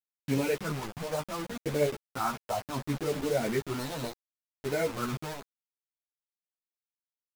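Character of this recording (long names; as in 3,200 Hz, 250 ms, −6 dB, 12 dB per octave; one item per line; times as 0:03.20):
phaser sweep stages 4, 0.69 Hz, lowest notch 340–1,200 Hz
a quantiser's noise floor 6 bits, dither none
a shimmering, thickened sound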